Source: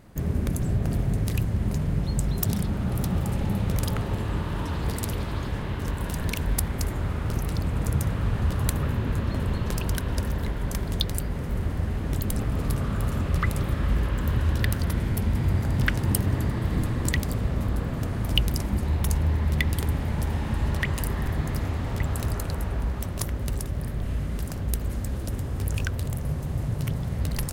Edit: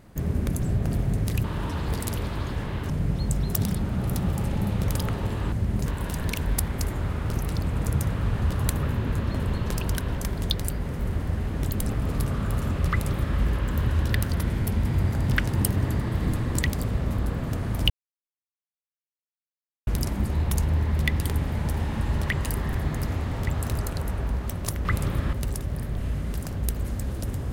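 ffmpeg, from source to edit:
ffmpeg -i in.wav -filter_complex "[0:a]asplit=9[link_01][link_02][link_03][link_04][link_05][link_06][link_07][link_08][link_09];[link_01]atrim=end=1.442[link_10];[link_02]atrim=start=4.398:end=5.862[link_11];[link_03]atrim=start=1.778:end=4.402[link_12];[link_04]atrim=start=1.438:end=1.782[link_13];[link_05]atrim=start=5.858:end=10.172[link_14];[link_06]atrim=start=10.668:end=18.4,asetpts=PTS-STARTPTS,afade=type=out:start_time=7.728:duration=0.004:curve=hsin,apad=pad_dur=1.97[link_15];[link_07]atrim=start=18.4:end=23.382,asetpts=PTS-STARTPTS,afade=type=in:duration=0.004:curve=hsin[link_16];[link_08]atrim=start=13.388:end=13.872[link_17];[link_09]atrim=start=23.378[link_18];[link_10][link_11]acrossfade=duration=0.004:curve1=hsin:curve2=hsin[link_19];[link_19][link_12]acrossfade=duration=0.004:curve1=hsin:curve2=hsin[link_20];[link_20][link_13]acrossfade=duration=0.004:curve1=hsin:curve2=hsin[link_21];[link_21][link_14]acrossfade=duration=0.004:curve1=hsin:curve2=hsin[link_22];[link_15][link_16]concat=n=2:v=0:a=1[link_23];[link_22][link_23]acrossfade=duration=0.004:curve1=hsin:curve2=hsin[link_24];[link_24][link_17]acrossfade=duration=0.004:curve1=hsin:curve2=hsin[link_25];[link_25][link_18]acrossfade=duration=0.004:curve1=hsin:curve2=hsin" out.wav

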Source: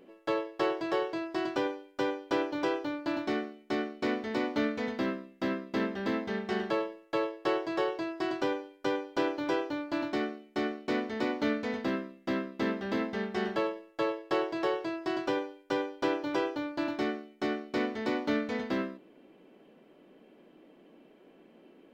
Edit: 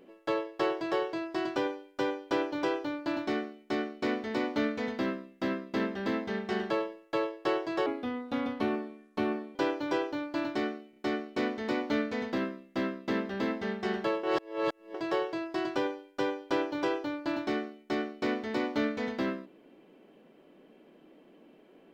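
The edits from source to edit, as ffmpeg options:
ffmpeg -i in.wav -filter_complex "[0:a]asplit=7[link_01][link_02][link_03][link_04][link_05][link_06][link_07];[link_01]atrim=end=7.864[link_08];[link_02]atrim=start=7.86:end=9.13,asetpts=PTS-STARTPTS,asetrate=33075,aresample=44100[link_09];[link_03]atrim=start=9.126:end=10.512[link_10];[link_04]atrim=start=10.478:end=10.512[link_11];[link_05]atrim=start=10.478:end=13.752[link_12];[link_06]atrim=start=13.748:end=14.462,asetpts=PTS-STARTPTS,areverse[link_13];[link_07]atrim=start=14.458[link_14];[link_08][link_09]acrossfade=duration=0.004:curve1=hsin:curve2=hsin[link_15];[link_15][link_10]acrossfade=duration=0.004:curve1=hsin:curve2=hsin[link_16];[link_16][link_11]acrossfade=duration=0.004:curve1=hsin:curve2=hsin[link_17];[link_17][link_12]acrossfade=duration=0.004:curve1=hsin:curve2=hsin[link_18];[link_18][link_13]acrossfade=duration=0.004:curve1=hsin:curve2=hsin[link_19];[link_19][link_14]acrossfade=duration=0.004:curve1=hsin:curve2=hsin" out.wav

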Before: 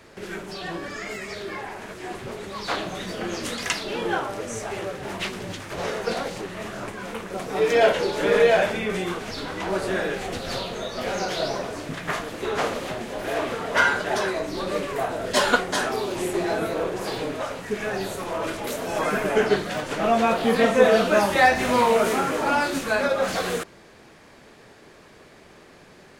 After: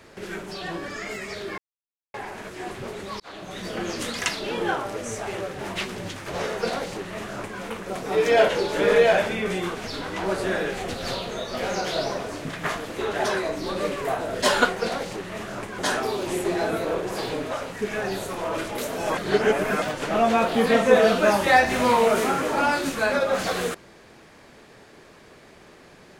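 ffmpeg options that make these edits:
ffmpeg -i in.wav -filter_complex "[0:a]asplit=8[link_01][link_02][link_03][link_04][link_05][link_06][link_07][link_08];[link_01]atrim=end=1.58,asetpts=PTS-STARTPTS,afade=type=out:start_time=1.576:duration=0.004:curve=hsin,apad=pad_dur=0.56[link_09];[link_02]atrim=start=1.58:end=2.64,asetpts=PTS-STARTPTS,afade=type=in:duration=0.004:curve=hsin,afade=type=out:start_time=1.056:duration=0.004:curve=hsin[link_10];[link_03]atrim=start=2.64:end=12.562,asetpts=PTS-STARTPTS,afade=type=in:duration=0.51[link_11];[link_04]atrim=start=14.028:end=15.672[link_12];[link_05]atrim=start=6.008:end=7.032[link_13];[link_06]atrim=start=15.668:end=19.062[link_14];[link_07]atrim=start=19.058:end=19.712,asetpts=PTS-STARTPTS,areverse[link_15];[link_08]atrim=start=19.708[link_16];[link_09][link_10][link_11]concat=n=3:v=0:a=1[link_17];[link_17][link_12]acrossfade=duration=0.004:curve1=hsin:curve2=hsin[link_18];[link_18][link_13]acrossfade=duration=0.004:curve1=hsin:curve2=hsin[link_19];[link_19][link_14]acrossfade=duration=0.004:curve1=hsin:curve2=hsin[link_20];[link_20][link_15]acrossfade=duration=0.004:curve1=hsin:curve2=hsin[link_21];[link_21][link_16]acrossfade=duration=0.004:curve1=hsin:curve2=hsin" out.wav

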